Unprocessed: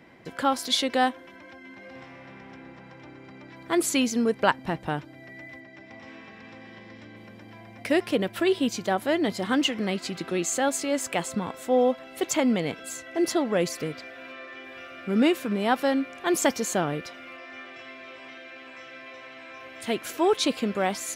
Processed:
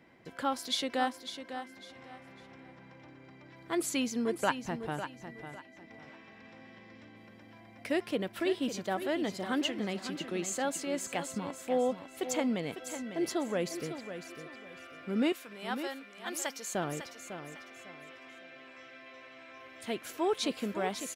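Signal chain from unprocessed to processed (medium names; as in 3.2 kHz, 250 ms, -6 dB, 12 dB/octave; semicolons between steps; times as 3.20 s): 15.32–16.75 s: high-pass 1.4 kHz 6 dB/octave; feedback delay 551 ms, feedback 29%, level -10 dB; trim -8 dB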